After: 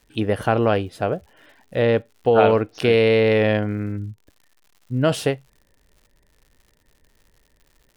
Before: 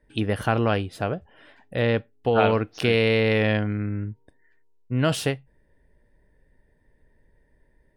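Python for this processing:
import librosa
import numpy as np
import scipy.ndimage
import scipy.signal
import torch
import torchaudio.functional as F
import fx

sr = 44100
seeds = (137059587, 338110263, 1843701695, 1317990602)

y = fx.spec_expand(x, sr, power=1.5, at=(3.96, 5.03), fade=0.02)
y = fx.dynamic_eq(y, sr, hz=510.0, q=0.81, threshold_db=-35.0, ratio=4.0, max_db=6)
y = fx.dmg_crackle(y, sr, seeds[0], per_s=140.0, level_db=-44.0)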